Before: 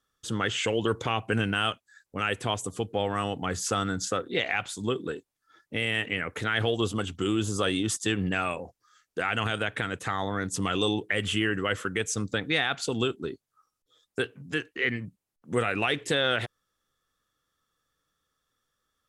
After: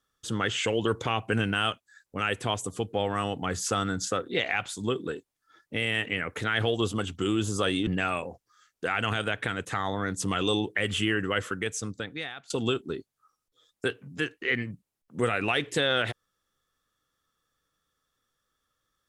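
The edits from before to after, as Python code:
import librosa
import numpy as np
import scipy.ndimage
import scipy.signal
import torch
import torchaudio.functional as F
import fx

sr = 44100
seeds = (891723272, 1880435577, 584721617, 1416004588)

y = fx.edit(x, sr, fx.cut(start_s=7.87, length_s=0.34),
    fx.fade_out_to(start_s=11.73, length_s=1.11, floor_db=-21.0), tone=tone)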